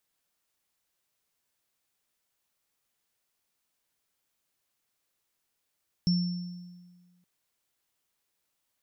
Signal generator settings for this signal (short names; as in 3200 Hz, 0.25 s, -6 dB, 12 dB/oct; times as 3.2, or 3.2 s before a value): sine partials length 1.17 s, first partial 178 Hz, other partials 5410 Hz, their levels -9 dB, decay 1.56 s, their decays 1.09 s, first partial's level -20.5 dB